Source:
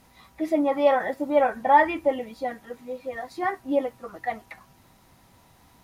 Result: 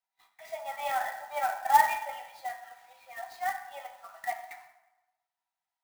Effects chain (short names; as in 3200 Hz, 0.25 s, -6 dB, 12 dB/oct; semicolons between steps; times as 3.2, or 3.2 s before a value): gate -50 dBFS, range -28 dB; steep high-pass 670 Hz 72 dB/oct; notch 1100 Hz, Q 7.1; reverb RT60 1.1 s, pre-delay 5 ms, DRR 3.5 dB; clock jitter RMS 0.023 ms; gain -5 dB